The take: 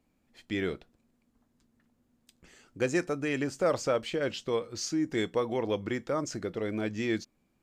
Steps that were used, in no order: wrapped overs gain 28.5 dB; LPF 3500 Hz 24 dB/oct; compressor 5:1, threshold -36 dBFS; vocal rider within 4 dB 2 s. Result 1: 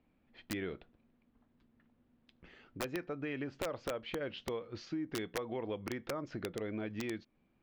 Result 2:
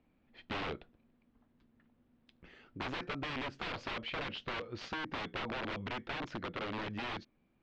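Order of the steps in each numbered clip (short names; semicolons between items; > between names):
compressor > LPF > wrapped overs > vocal rider; wrapped overs > LPF > compressor > vocal rider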